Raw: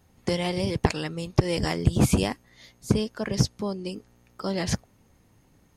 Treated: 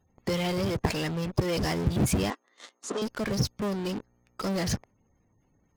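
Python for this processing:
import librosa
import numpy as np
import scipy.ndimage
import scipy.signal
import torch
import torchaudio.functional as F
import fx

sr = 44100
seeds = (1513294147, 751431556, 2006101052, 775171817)

p1 = fx.spec_gate(x, sr, threshold_db=-25, keep='strong')
p2 = fx.fuzz(p1, sr, gain_db=45.0, gate_db=-47.0)
p3 = p1 + (p2 * librosa.db_to_amplitude(-11.0))
p4 = fx.cabinet(p3, sr, low_hz=310.0, low_slope=24, high_hz=8100.0, hz=(1200.0, 2300.0, 4800.0), db=(8, -5, -7), at=(2.3, 3.02))
y = p4 * librosa.db_to_amplitude(-7.5)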